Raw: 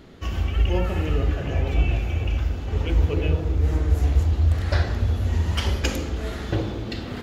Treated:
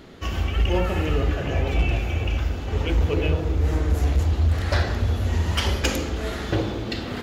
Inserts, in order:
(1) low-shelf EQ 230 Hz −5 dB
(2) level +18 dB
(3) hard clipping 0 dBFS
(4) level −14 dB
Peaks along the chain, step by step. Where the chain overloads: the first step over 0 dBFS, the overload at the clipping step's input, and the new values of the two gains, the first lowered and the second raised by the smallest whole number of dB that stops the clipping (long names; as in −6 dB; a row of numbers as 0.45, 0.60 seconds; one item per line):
−11.0, +7.0, 0.0, −14.0 dBFS
step 2, 7.0 dB
step 2 +11 dB, step 4 −7 dB